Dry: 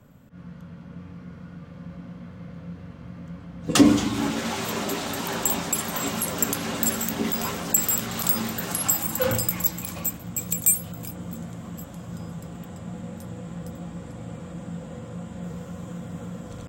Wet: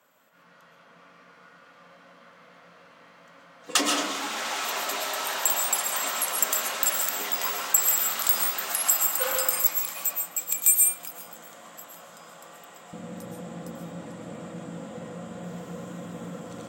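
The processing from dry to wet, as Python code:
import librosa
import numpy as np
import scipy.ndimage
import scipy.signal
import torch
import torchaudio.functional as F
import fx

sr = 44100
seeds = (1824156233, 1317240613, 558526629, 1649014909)

y = fx.highpass(x, sr, hz=fx.steps((0.0, 780.0), (12.93, 220.0)), slope=12)
y = fx.rev_freeverb(y, sr, rt60_s=0.79, hf_ratio=0.45, predelay_ms=90, drr_db=1.5)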